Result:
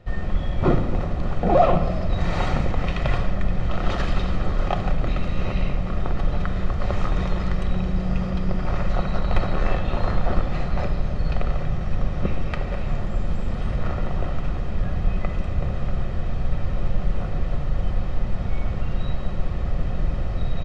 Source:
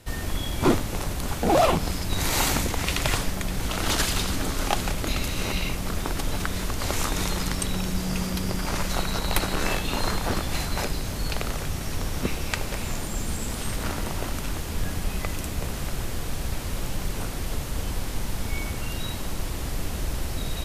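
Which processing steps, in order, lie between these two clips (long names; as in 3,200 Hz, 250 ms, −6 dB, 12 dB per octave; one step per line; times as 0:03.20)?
head-to-tape spacing loss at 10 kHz 38 dB
comb filter 1.6 ms, depth 40%
rectangular room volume 2,100 cubic metres, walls mixed, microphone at 0.95 metres
level +2.5 dB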